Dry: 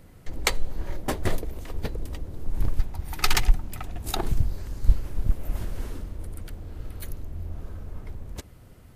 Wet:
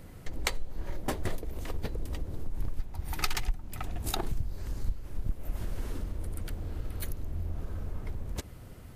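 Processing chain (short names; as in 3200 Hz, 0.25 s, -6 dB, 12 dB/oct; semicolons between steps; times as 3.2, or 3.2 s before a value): compressor 3:1, threshold -32 dBFS, peak gain reduction 17.5 dB; gain +2.5 dB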